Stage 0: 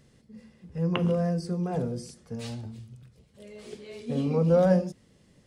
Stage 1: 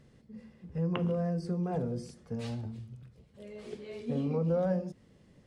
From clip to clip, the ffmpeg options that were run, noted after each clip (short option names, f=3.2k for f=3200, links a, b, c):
-af "highshelf=f=3.7k:g=-10,acompressor=threshold=-30dB:ratio=2.5"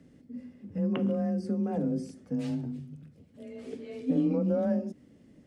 -af "equalizer=f=250:t=o:w=0.67:g=9,equalizer=f=1k:t=o:w=0.67:g=-5,equalizer=f=4k:t=o:w=0.67:g=-4,afreqshift=25"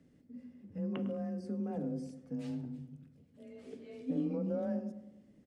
-filter_complex "[0:a]asplit=2[a][b];[b]adelay=104,lowpass=f=1.8k:p=1,volume=-12dB,asplit=2[c][d];[d]adelay=104,lowpass=f=1.8k:p=1,volume=0.53,asplit=2[e][f];[f]adelay=104,lowpass=f=1.8k:p=1,volume=0.53,asplit=2[g][h];[h]adelay=104,lowpass=f=1.8k:p=1,volume=0.53,asplit=2[i][j];[j]adelay=104,lowpass=f=1.8k:p=1,volume=0.53,asplit=2[k][l];[l]adelay=104,lowpass=f=1.8k:p=1,volume=0.53[m];[a][c][e][g][i][k][m]amix=inputs=7:normalize=0,volume=-8dB"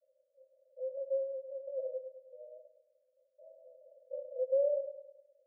-af "asuperpass=centerf=570:order=20:qfactor=4,volume=9dB"